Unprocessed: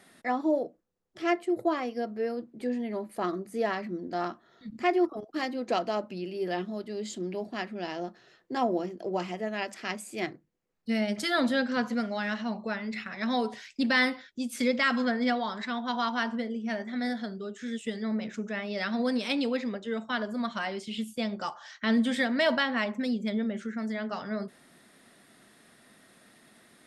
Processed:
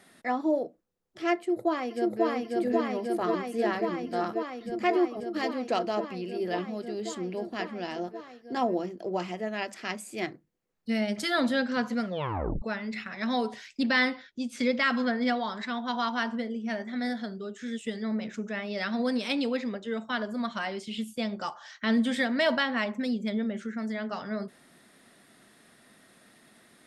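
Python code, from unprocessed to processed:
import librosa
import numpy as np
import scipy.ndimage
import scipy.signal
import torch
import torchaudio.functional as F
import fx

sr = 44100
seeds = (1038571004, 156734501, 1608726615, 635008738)

y = fx.echo_throw(x, sr, start_s=1.36, length_s=0.9, ms=540, feedback_pct=85, wet_db=-0.5)
y = fx.lowpass(y, sr, hz=6400.0, slope=12, at=(13.83, 15.25))
y = fx.edit(y, sr, fx.tape_stop(start_s=12.05, length_s=0.57), tone=tone)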